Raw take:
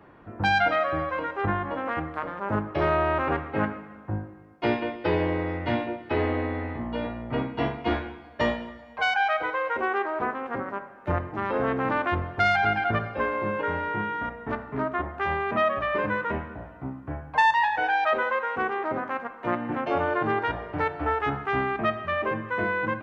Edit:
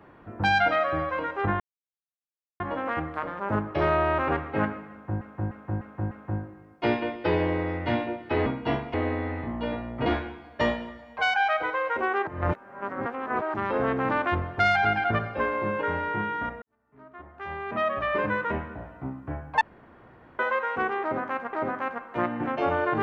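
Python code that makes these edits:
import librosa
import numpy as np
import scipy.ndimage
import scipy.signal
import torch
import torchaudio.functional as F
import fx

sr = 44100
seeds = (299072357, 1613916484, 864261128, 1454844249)

y = fx.edit(x, sr, fx.insert_silence(at_s=1.6, length_s=1.0),
    fx.repeat(start_s=3.91, length_s=0.3, count=5),
    fx.move(start_s=7.38, length_s=0.48, to_s=6.26),
    fx.reverse_span(start_s=10.07, length_s=1.27),
    fx.fade_in_span(start_s=14.42, length_s=1.46, curve='qua'),
    fx.room_tone_fill(start_s=17.41, length_s=0.78),
    fx.repeat(start_s=18.82, length_s=0.51, count=2), tone=tone)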